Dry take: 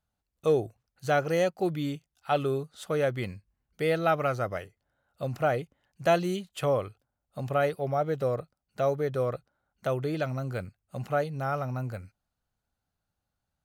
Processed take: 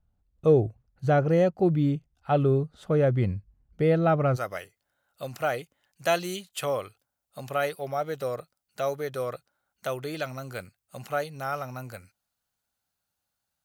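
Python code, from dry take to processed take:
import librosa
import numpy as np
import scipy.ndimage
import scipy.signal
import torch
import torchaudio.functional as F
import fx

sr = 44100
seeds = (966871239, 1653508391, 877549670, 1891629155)

y = fx.tilt_eq(x, sr, slope=fx.steps((0.0, -3.5), (4.35, 2.5)))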